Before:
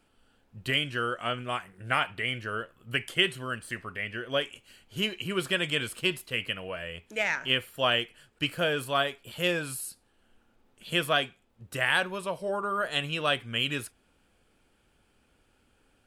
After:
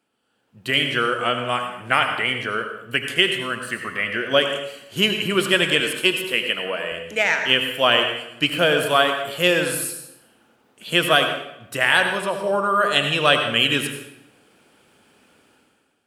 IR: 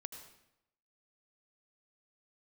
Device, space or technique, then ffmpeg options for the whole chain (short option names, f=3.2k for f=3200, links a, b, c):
far laptop microphone: -filter_complex "[1:a]atrim=start_sample=2205[a];[0:a][a]afir=irnorm=-1:irlink=0,highpass=170,dynaudnorm=f=110:g=11:m=16.5dB,asettb=1/sr,asplit=3[b][c][d];[b]atrim=end=5.804[e];[c]atrim=start=5.8:end=6.92,asetpts=PTS-STARTPTS,afade=t=in:d=0.004:c=qsin,afade=t=out:st=1.116:d=0.004:c=qsin,highpass=210[f];[d]atrim=start=6.916[g];[e][f]acrossfade=d=0.004:c1=hsin:c2=qsin[h];[h][g]acrossfade=d=0.004:c1=qsin:c2=hsin"